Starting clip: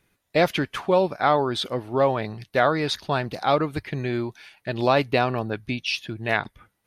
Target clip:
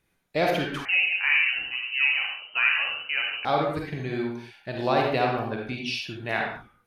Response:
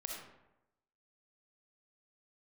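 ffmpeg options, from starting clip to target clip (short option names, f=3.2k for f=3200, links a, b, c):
-filter_complex "[1:a]atrim=start_sample=2205,afade=t=out:st=0.31:d=0.01,atrim=end_sample=14112,asetrate=52920,aresample=44100[a];[0:a][a]afir=irnorm=-1:irlink=0,asettb=1/sr,asplit=3[b][c][d];[b]atrim=end=0.854[e];[c]atrim=start=0.85:end=3.45,asetpts=PTS-STARTPTS,afade=t=in:d=0.004:c=qsin,afade=t=out:st=2.596:d=0.004:c=qsin,lowpass=f=2.6k:t=q:w=0.5098,lowpass=f=2.6k:t=q:w=0.6013,lowpass=f=2.6k:t=q:w=0.9,lowpass=f=2.6k:t=q:w=2.563,afreqshift=-3100[f];[d]atrim=start=3.446[g];[e][f]acrossfade=d=0.004:c1=hsin:c2=qsin[h];[h][g]acrossfade=d=0.004:c1=qsin:c2=hsin"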